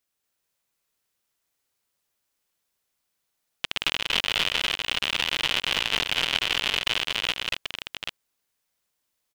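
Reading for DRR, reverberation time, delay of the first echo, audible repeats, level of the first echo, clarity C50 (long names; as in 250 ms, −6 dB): no reverb audible, no reverb audible, 125 ms, 3, −18.0 dB, no reverb audible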